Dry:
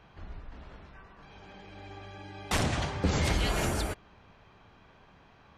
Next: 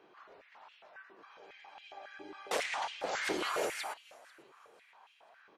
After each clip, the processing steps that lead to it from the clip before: frequency-shifting echo 494 ms, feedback 37%, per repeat -96 Hz, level -22.5 dB; step-sequenced high-pass 7.3 Hz 360–2800 Hz; trim -6.5 dB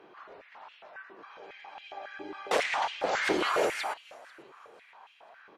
treble shelf 5.4 kHz -10 dB; trim +7.5 dB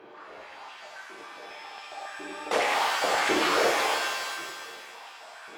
reverse; upward compressor, threshold -43 dBFS; reverse; pitch-shifted reverb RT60 1.5 s, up +7 st, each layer -2 dB, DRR 1 dB

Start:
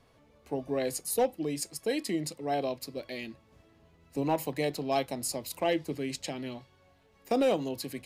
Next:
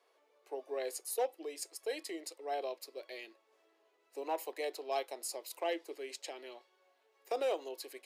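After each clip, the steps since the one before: elliptic high-pass 370 Hz, stop band 70 dB; trim -6 dB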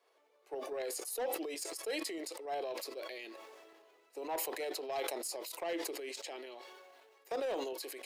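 tremolo saw up 11 Hz, depth 40%; saturation -32.5 dBFS, distortion -14 dB; decay stretcher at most 26 dB/s; trim +1.5 dB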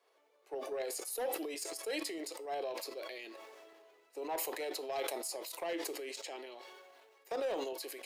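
feedback comb 60 Hz, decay 0.33 s, harmonics odd, mix 50%; trim +4.5 dB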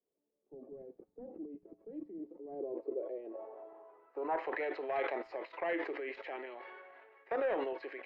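level rider gain up to 4 dB; low-pass sweep 200 Hz -> 1.9 kHz, 2.12–4.59 s; distance through air 230 m; trim -1.5 dB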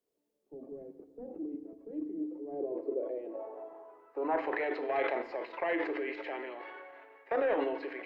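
FDN reverb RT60 1.2 s, low-frequency decay 1.35×, high-frequency decay 0.75×, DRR 9.5 dB; trim +3.5 dB

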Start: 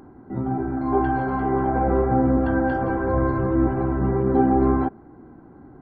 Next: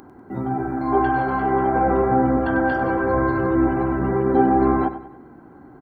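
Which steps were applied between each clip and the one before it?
tilt EQ +2 dB/octave; on a send: feedback delay 97 ms, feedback 41%, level -12.5 dB; on the sum: trim +4 dB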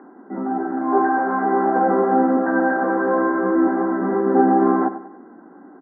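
Chebyshev band-pass 190–1900 Hz, order 5; trim +2 dB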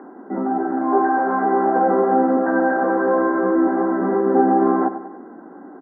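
peaking EQ 550 Hz +4 dB 1.4 oct; in parallel at +3 dB: compression, threshold -23 dBFS, peak gain reduction 14 dB; on the sum: trim -5 dB

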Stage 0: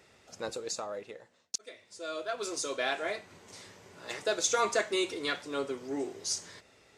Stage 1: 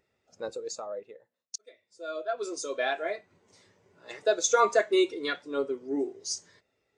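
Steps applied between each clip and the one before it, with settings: spectral contrast expander 1.5:1; trim +4.5 dB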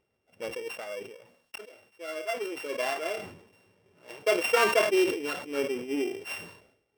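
sorted samples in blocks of 16 samples; treble shelf 3.7 kHz -8.5 dB; decay stretcher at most 82 dB/s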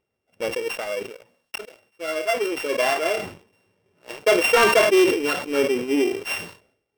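waveshaping leveller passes 2; trim +2 dB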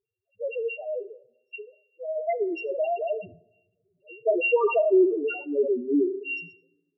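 loudest bins only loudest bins 2; reverberation RT60 0.95 s, pre-delay 7 ms, DRR 17 dB

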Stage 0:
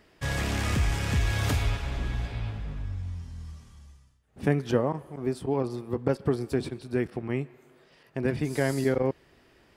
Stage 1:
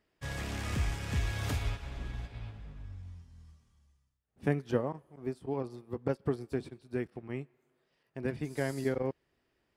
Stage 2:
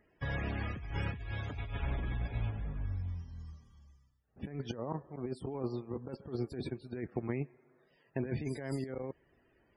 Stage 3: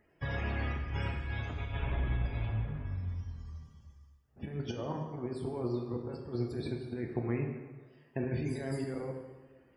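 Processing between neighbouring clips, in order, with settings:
upward expansion 1.5:1, over -45 dBFS; trim -4.5 dB
compressor with a negative ratio -40 dBFS, ratio -1; loudest bins only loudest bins 64; trim +3 dB
plate-style reverb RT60 1.3 s, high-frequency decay 0.8×, DRR 1.5 dB

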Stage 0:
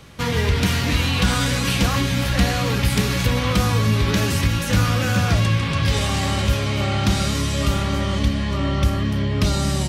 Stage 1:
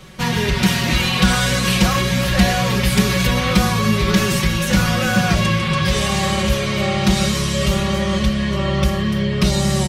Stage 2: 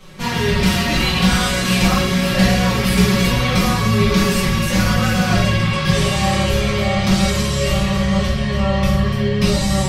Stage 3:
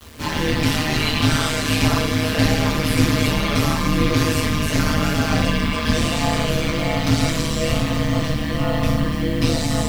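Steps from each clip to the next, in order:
comb 5.4 ms, depth 98%; trim +1 dB
simulated room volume 110 m³, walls mixed, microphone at 1.6 m; trim -6 dB
ring modulator 77 Hz; bit crusher 7-bit

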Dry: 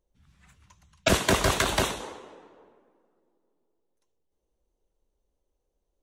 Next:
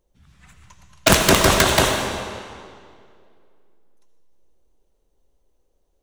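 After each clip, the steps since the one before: integer overflow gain 10.5 dB; hum notches 50/100 Hz; algorithmic reverb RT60 2 s, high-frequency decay 0.9×, pre-delay 45 ms, DRR 5.5 dB; trim +8 dB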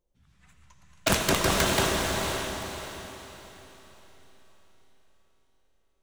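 flange 0.69 Hz, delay 5.5 ms, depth 8.9 ms, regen +84%; on a send: echo that smears into a reverb 483 ms, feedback 40%, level -4 dB; on the sum: trim -5 dB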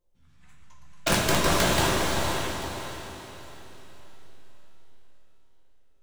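simulated room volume 110 m³, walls mixed, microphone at 0.86 m; trim -2 dB

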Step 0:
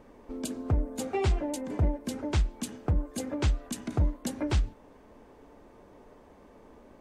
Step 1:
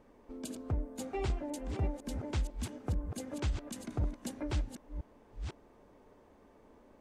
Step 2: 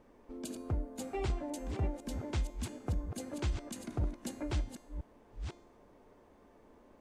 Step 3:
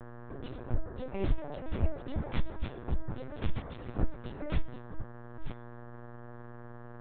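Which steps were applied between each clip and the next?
chunks repeated in reverse 501 ms, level -7.5 dB; trim -7.5 dB
feedback comb 350 Hz, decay 0.73 s, mix 70%; trim +9.5 dB
chorus voices 6, 0.91 Hz, delay 17 ms, depth 1.6 ms; mains buzz 120 Hz, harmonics 15, -51 dBFS -5 dB/octave; LPC vocoder at 8 kHz pitch kept; trim +5 dB

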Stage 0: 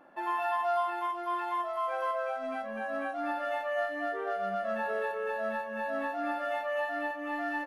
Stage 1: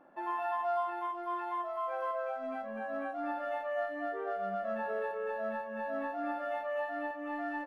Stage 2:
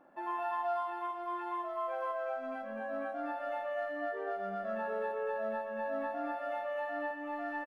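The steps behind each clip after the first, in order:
treble shelf 2 kHz -10.5 dB; trim -1.5 dB
feedback delay 117 ms, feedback 59%, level -10 dB; trim -1.5 dB

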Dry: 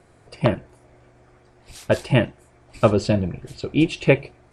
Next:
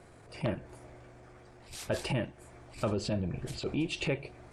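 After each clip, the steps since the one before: transient shaper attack -11 dB, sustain +2 dB; compression 12:1, threshold -28 dBFS, peak gain reduction 14 dB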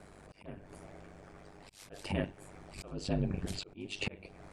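slow attack 370 ms; ring modulator 49 Hz; trim +3.5 dB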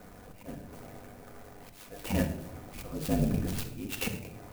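reverberation RT60 0.80 s, pre-delay 4 ms, DRR 4 dB; sampling jitter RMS 0.055 ms; trim +3 dB

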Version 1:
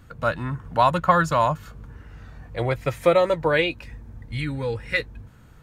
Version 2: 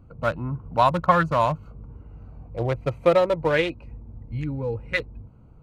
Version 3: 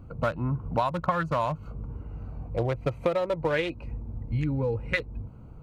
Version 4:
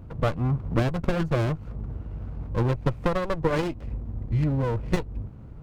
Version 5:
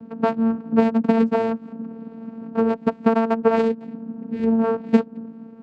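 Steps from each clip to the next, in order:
local Wiener filter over 25 samples
compression 6:1, threshold -28 dBFS, peak gain reduction 15 dB; trim +4.5 dB
sliding maximum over 33 samples; trim +3.5 dB
vocoder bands 8, saw 226 Hz; trim +6.5 dB

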